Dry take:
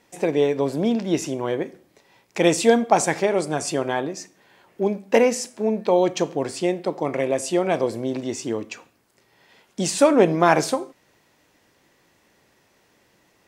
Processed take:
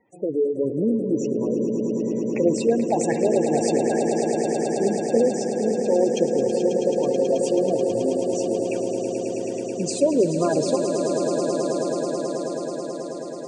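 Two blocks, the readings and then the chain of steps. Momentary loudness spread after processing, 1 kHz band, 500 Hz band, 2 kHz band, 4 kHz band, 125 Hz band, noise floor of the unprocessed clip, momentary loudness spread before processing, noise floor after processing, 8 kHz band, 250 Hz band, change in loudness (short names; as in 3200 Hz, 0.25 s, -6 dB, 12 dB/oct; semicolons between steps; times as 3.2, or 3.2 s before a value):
7 LU, -5.0 dB, +1.5 dB, -10.0 dB, -5.0 dB, -0.5 dB, -62 dBFS, 12 LU, -31 dBFS, -2.0 dB, +1.5 dB, -1.0 dB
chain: spectral gate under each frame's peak -10 dB strong; rotary speaker horn 0.8 Hz; swelling echo 0.108 s, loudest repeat 8, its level -10 dB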